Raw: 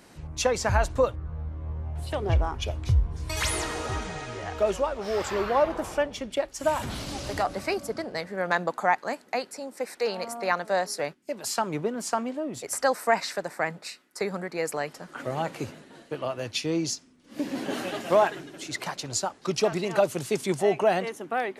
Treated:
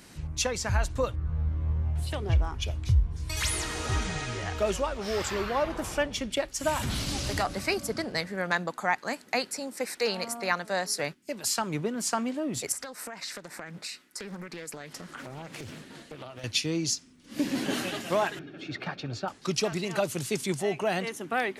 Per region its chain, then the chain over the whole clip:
12.72–16.44 compressor, threshold -39 dBFS + Doppler distortion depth 0.49 ms
18.39–19.28 air absorption 340 m + notch comb 1000 Hz
whole clip: bell 640 Hz -8.5 dB 2.4 oct; vocal rider within 4 dB 0.5 s; gain +3 dB

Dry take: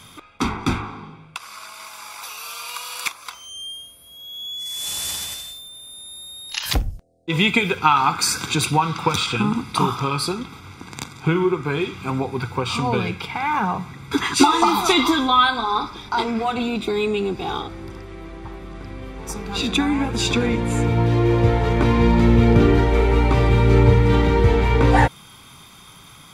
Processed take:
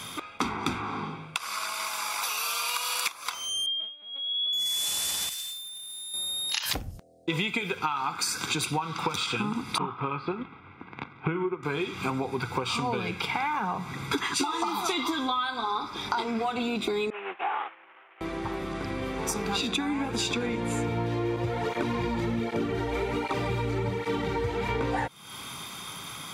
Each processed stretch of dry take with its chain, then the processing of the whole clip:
3.66–4.53 steep high-pass 280 Hz + LPC vocoder at 8 kHz pitch kept
5.29–6.14 passive tone stack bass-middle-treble 5-5-5 + short-mantissa float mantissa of 2-bit
9.78–11.63 LPF 2600 Hz 24 dB/oct + notch 1800 Hz, Q 22 + upward expander, over -40 dBFS
17.1–18.21 delta modulation 16 kbps, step -32.5 dBFS + Butterworth band-pass 1500 Hz, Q 0.66 + expander -33 dBFS
21.36–24.69 high shelf 5000 Hz +4.5 dB + tape flanging out of phase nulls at 1.3 Hz, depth 5.8 ms
whole clip: HPF 200 Hz 6 dB/oct; compressor 10:1, threshold -32 dBFS; gain +6 dB

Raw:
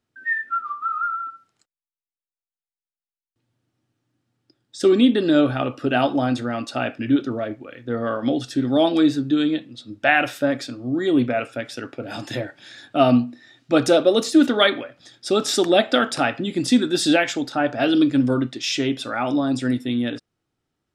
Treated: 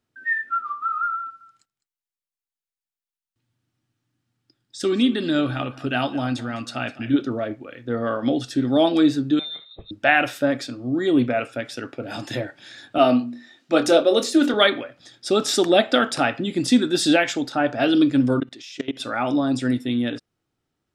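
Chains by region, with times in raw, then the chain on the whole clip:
1.2–7.14 bell 490 Hz -7.5 dB 1.8 oct + echo 0.206 s -17.5 dB
9.39–9.91 compressor 16:1, threshold -29 dBFS + inverted band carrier 3900 Hz + three-band expander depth 100%
12.98–14.54 HPF 230 Hz + notches 60/120/180/240/300/360/420/480/540 Hz + doubler 24 ms -11 dB
18.4–19 level quantiser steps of 20 dB + low shelf 130 Hz -11.5 dB
whole clip: dry

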